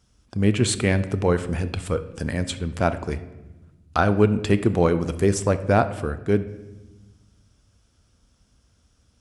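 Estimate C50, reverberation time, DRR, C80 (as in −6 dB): 13.5 dB, 1.1 s, 11.0 dB, 16.0 dB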